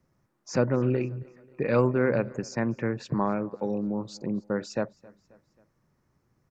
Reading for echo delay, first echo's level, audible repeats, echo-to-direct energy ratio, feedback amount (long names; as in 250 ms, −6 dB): 268 ms, −24.0 dB, 2, −23.0 dB, 51%